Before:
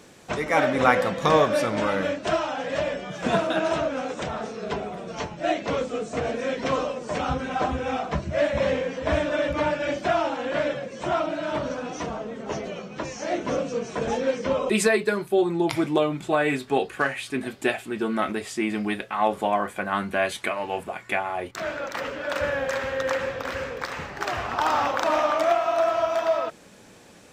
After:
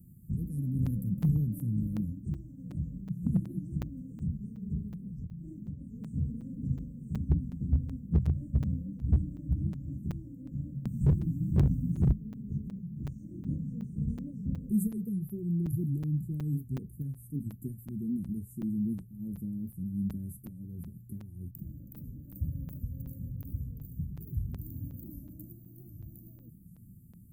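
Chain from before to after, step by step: inverse Chebyshev band-stop 670–4700 Hz, stop band 70 dB; 4.90–6.05 s: compression, threshold -44 dBFS, peak gain reduction 11 dB; 10.85–12.13 s: tone controls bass +13 dB, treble +13 dB; one-sided clip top -26.5 dBFS, bottom -23 dBFS; crackling interface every 0.37 s, samples 256, zero, from 0.86 s; warped record 78 rpm, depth 160 cents; trim +7 dB

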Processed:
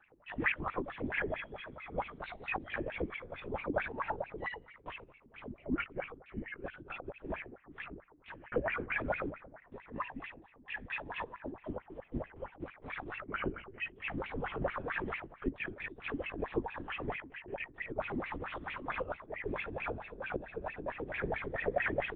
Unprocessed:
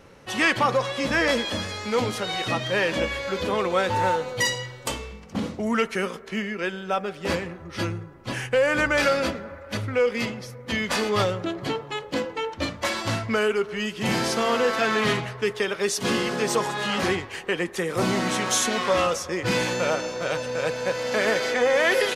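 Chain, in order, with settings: 9.62–11.65 s: comb filter that takes the minimum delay 1.1 ms; wah-wah 4.5 Hz 240–2600 Hz, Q 16; LPC vocoder at 8 kHz whisper; trim +1 dB

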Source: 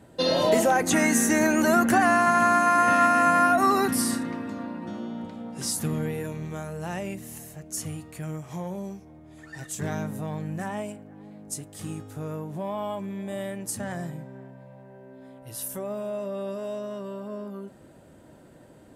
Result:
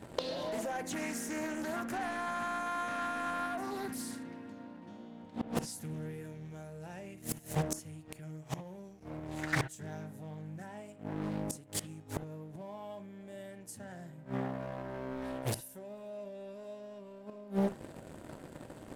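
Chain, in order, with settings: band-stop 1.2 kHz, Q 5.3; waveshaping leveller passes 2; inverted gate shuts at -22 dBFS, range -25 dB; on a send at -12 dB: reverberation, pre-delay 32 ms; on the sum: loudspeaker Doppler distortion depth 0.85 ms; trim +3.5 dB

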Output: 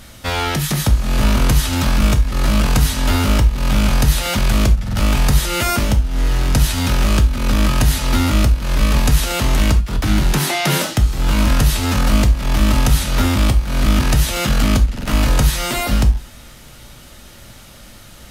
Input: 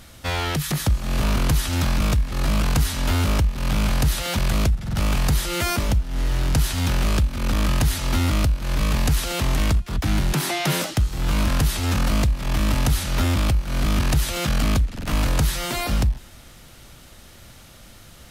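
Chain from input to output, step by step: gated-style reverb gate 110 ms falling, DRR 6 dB; trim +4.5 dB

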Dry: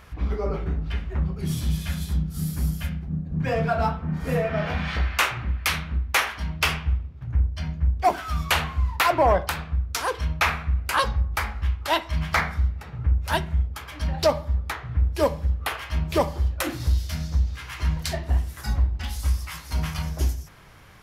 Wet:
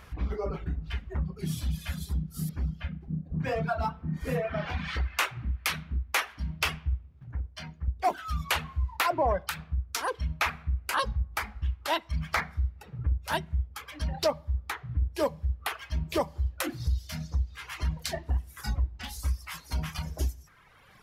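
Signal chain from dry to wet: reverb removal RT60 1.4 s; 7.22–7.88 s: bass shelf 320 Hz -9.5 dB; in parallel at +2.5 dB: compression, threshold -28 dBFS, peak gain reduction 12.5 dB; 2.49–3.01 s: on the sum: distance through air 250 m; trim -9 dB

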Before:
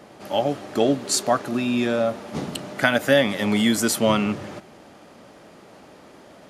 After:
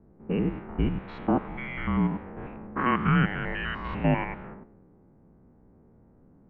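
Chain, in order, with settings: spectrogram pixelated in time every 100 ms; level-controlled noise filter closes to 450 Hz, open at -19.5 dBFS; mistuned SSB -390 Hz 460–2700 Hz

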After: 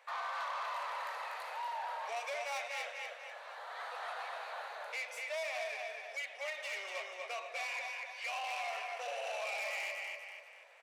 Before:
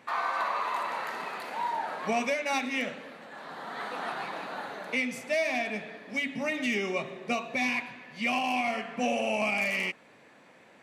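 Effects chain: feedback delay 243 ms, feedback 39%, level -5 dB; saturation -28.5 dBFS, distortion -11 dB; steep high-pass 510 Hz 48 dB/octave; trim -6 dB

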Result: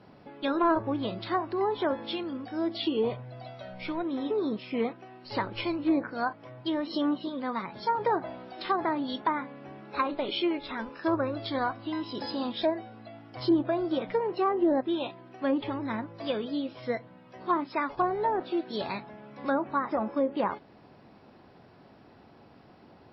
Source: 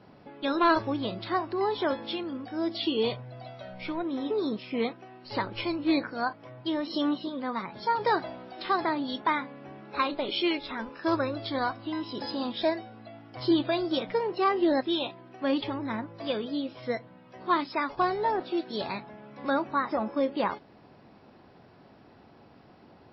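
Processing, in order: low-pass that closes with the level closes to 1.1 kHz, closed at -21.5 dBFS

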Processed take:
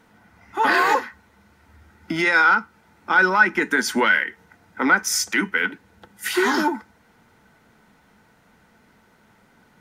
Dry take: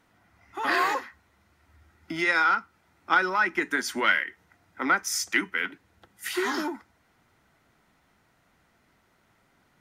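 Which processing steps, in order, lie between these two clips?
peak limiter -16.5 dBFS, peak gain reduction 8.5 dB; small resonant body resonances 210/460/880/1500 Hz, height 8 dB; trim +6.5 dB

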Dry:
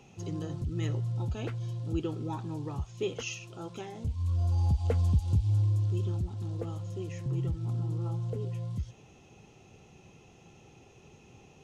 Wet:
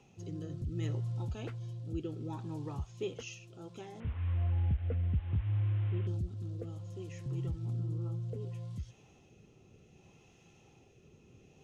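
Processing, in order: 4.00–6.07 s: one-bit delta coder 16 kbps, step -41.5 dBFS; rotary cabinet horn 0.65 Hz; trim -3.5 dB

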